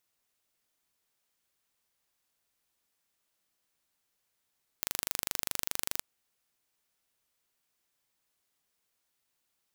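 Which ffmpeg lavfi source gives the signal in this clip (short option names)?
-f lavfi -i "aevalsrc='0.631*eq(mod(n,1771),0)':d=1.18:s=44100"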